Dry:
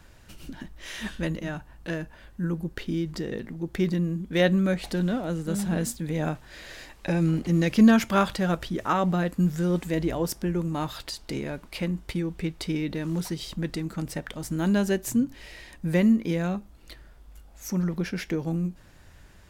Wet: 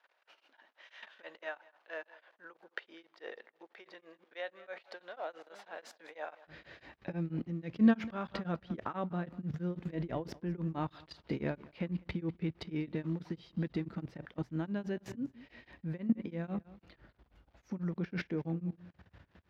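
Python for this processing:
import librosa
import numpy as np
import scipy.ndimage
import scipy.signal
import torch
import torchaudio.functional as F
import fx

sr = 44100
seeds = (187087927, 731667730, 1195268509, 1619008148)

y = fx.echo_feedback(x, sr, ms=197, feedback_pct=16, wet_db=-19.0)
y = fx.level_steps(y, sr, step_db=17)
y = fx.dmg_crackle(y, sr, seeds[0], per_s=260.0, level_db=-56.0)
y = fx.highpass(y, sr, hz=fx.steps((0.0, 580.0), (6.47, 68.0)), slope=24)
y = fx.rider(y, sr, range_db=3, speed_s=0.5)
y = fx.air_absorb(y, sr, metres=280.0)
y = y * np.abs(np.cos(np.pi * 6.1 * np.arange(len(y)) / sr))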